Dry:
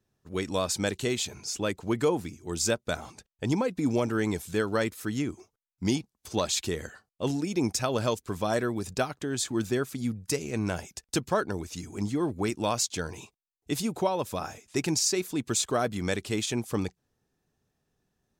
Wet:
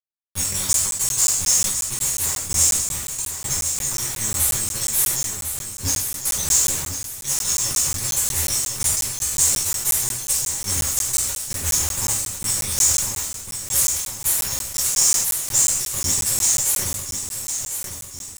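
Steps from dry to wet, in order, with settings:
inverse Chebyshev band-stop filter 190–2,300 Hz, stop band 60 dB
dead-zone distortion −56.5 dBFS
downward compressor 6 to 1, threshold −52 dBFS, peak gain reduction 23 dB
fuzz pedal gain 53 dB, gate −60 dBFS
bit reduction 5 bits
repeating echo 1,051 ms, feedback 46%, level −8 dB
convolution reverb, pre-delay 3 ms, DRR −8 dB
regular buffer underruns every 0.18 s, samples 512, zero, from 0:00.73
level that may fall only so fast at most 44 dB per second
level −7 dB

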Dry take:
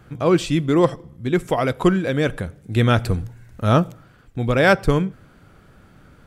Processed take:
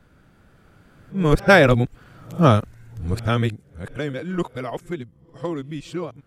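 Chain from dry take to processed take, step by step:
played backwards from end to start
source passing by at 0:01.94, 9 m/s, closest 5.3 metres
level +4 dB

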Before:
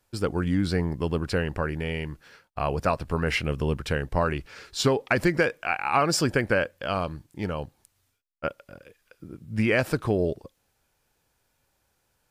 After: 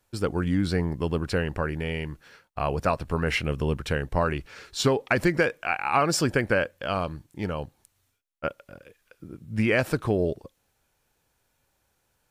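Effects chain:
notch filter 4,900 Hz, Q 20

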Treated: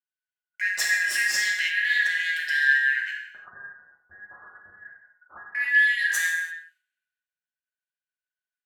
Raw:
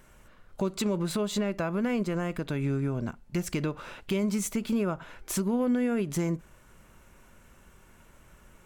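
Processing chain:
band-splitting scrambler in four parts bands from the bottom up 4123
high-pass filter 1,100 Hz 6 dB per octave
noise gate −44 dBFS, range −26 dB
0:03.23–0:05.55: Butterworth low-pass 1,400 Hz 72 dB per octave
downward compressor 2 to 1, threshold −38 dBFS, peak gain reduction 7.5 dB
reverb whose tail is shaped and stops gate 370 ms falling, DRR −2 dB
multiband upward and downward expander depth 70%
level +8 dB

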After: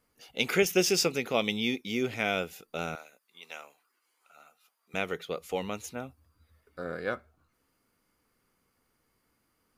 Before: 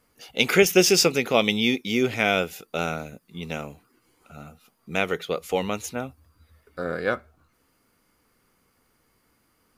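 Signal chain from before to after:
0:02.95–0:04.94: high-pass filter 830 Hz 12 dB per octave
level −7.5 dB

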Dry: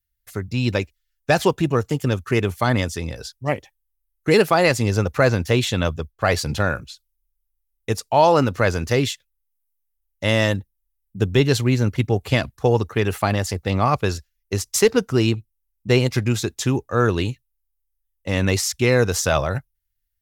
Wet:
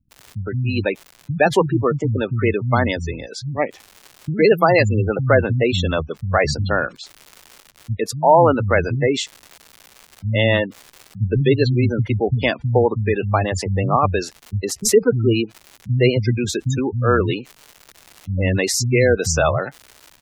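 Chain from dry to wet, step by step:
surface crackle 290 per second −32 dBFS
multiband delay without the direct sound lows, highs 110 ms, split 200 Hz
gate on every frequency bin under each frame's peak −20 dB strong
level +3 dB

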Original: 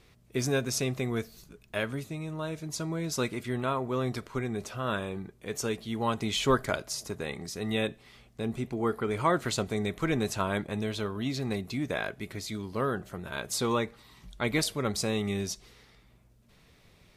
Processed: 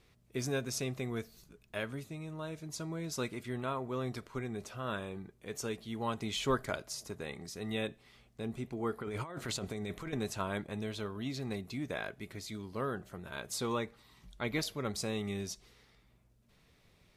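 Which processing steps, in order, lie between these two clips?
0:09.00–0:10.13: compressor whose output falls as the input rises −33 dBFS, ratio −1
0:14.41–0:14.83: parametric band 8,600 Hz −14.5 dB → −8.5 dB 0.25 octaves
level −6.5 dB

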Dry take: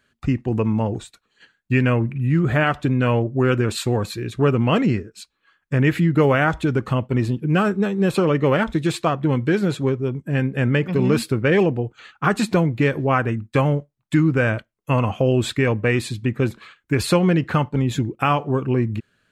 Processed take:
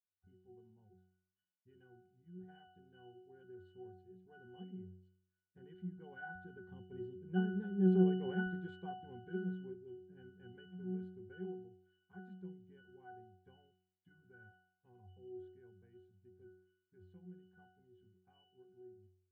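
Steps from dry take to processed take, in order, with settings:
source passing by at 0:08.06, 10 m/s, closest 5.2 metres
resonances in every octave F#, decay 0.68 s
level +2 dB

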